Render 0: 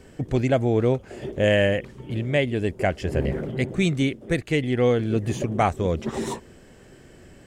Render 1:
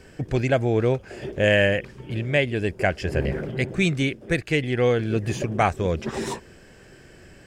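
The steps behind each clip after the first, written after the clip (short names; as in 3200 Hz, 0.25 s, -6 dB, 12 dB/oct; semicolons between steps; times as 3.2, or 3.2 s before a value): thirty-one-band EQ 250 Hz -4 dB, 1600 Hz +6 dB, 2500 Hz +5 dB, 5000 Hz +6 dB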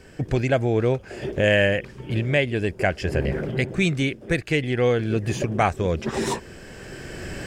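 recorder AGC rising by 10 dB/s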